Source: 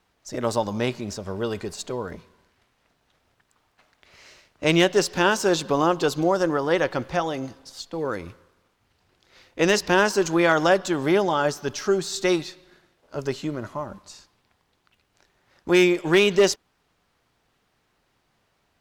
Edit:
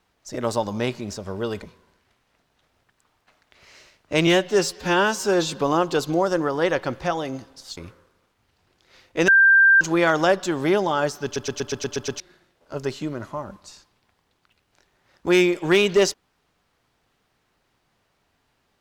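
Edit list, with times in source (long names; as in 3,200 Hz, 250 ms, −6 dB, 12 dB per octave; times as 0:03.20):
0:01.62–0:02.13: remove
0:04.78–0:05.62: time-stretch 1.5×
0:07.86–0:08.19: remove
0:09.70–0:10.23: beep over 1,580 Hz −10.5 dBFS
0:11.66: stutter in place 0.12 s, 8 plays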